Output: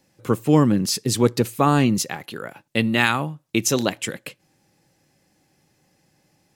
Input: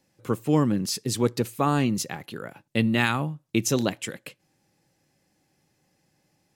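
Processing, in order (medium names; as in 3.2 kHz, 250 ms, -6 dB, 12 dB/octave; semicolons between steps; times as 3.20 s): 1.99–3.96 s: bass shelf 300 Hz -6.5 dB; trim +5.5 dB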